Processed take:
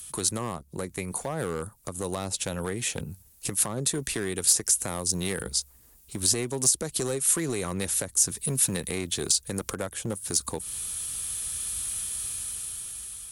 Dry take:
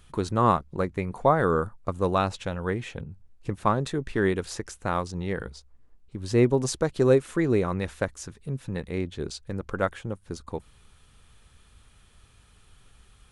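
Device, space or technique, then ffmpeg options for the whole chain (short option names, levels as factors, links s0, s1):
FM broadcast chain: -filter_complex "[0:a]asettb=1/sr,asplit=3[s0][s1][s2];[s0]atrim=end=4.884[s3];[s1]atrim=start=4.88:end=5.43,asetpts=PTS-STARTPTS,afade=t=in:d=0.004:c=qsin,afade=t=out:st=0.546:d=0.004:c=qsin,highshelf=f=6500:g=8.5[s4];[s2]atrim=start=5.426[s5];[s3][s4]acrossfade=d=0.004:c1=hsin:c2=qsin[s6];[s6][s5]acrossfade=d=0.004:c1=qsin:c2=hsin,highpass=41,dynaudnorm=f=440:g=7:m=3.98,acrossover=split=150|690[s7][s8][s9];[s7]acompressor=threshold=0.0126:ratio=4[s10];[s8]acompressor=threshold=0.0447:ratio=4[s11];[s9]acompressor=threshold=0.0126:ratio=4[s12];[s10][s11][s12]amix=inputs=3:normalize=0,aemphasis=mode=production:type=75fm,alimiter=limit=0.112:level=0:latency=1:release=103,asoftclip=type=hard:threshold=0.075,lowpass=f=15000:w=0.5412,lowpass=f=15000:w=1.3066,aemphasis=mode=production:type=75fm"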